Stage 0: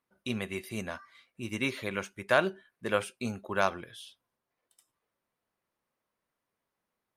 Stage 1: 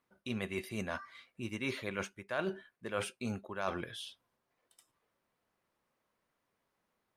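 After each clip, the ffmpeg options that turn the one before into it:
-af "areverse,acompressor=threshold=-38dB:ratio=5,areverse,highshelf=f=7.2k:g=-6.5,volume=4dB"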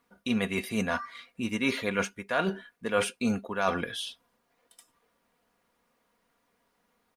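-af "aecho=1:1:4.2:0.53,volume=8dB"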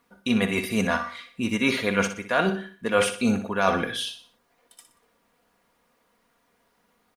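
-af "aecho=1:1:61|122|183|244:0.316|0.13|0.0532|0.0218,volume=5dB"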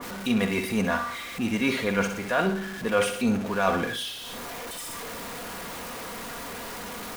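-af "aeval=exprs='val(0)+0.5*0.0422*sgn(val(0))':c=same,adynamicequalizer=threshold=0.0158:dfrequency=2300:dqfactor=0.7:tfrequency=2300:tqfactor=0.7:attack=5:release=100:ratio=0.375:range=2.5:mode=cutabove:tftype=highshelf,volume=-3dB"

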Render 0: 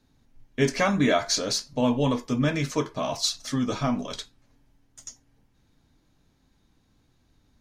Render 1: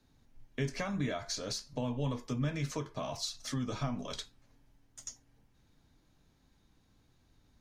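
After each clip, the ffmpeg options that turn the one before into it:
-filter_complex "[0:a]equalizer=f=260:t=o:w=0.77:g=-2,acrossover=split=140[a][b];[b]acompressor=threshold=-34dB:ratio=4[c];[a][c]amix=inputs=2:normalize=0,volume=-2.5dB"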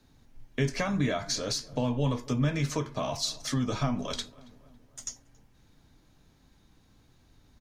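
-filter_complex "[0:a]asplit=2[a][b];[b]adelay=277,lowpass=f=1.7k:p=1,volume=-20.5dB,asplit=2[c][d];[d]adelay=277,lowpass=f=1.7k:p=1,volume=0.54,asplit=2[e][f];[f]adelay=277,lowpass=f=1.7k:p=1,volume=0.54,asplit=2[g][h];[h]adelay=277,lowpass=f=1.7k:p=1,volume=0.54[i];[a][c][e][g][i]amix=inputs=5:normalize=0,volume=6.5dB"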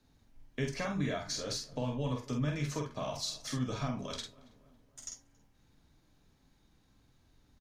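-filter_complex "[0:a]asplit=2[a][b];[b]adelay=47,volume=-4.5dB[c];[a][c]amix=inputs=2:normalize=0,volume=-7dB"

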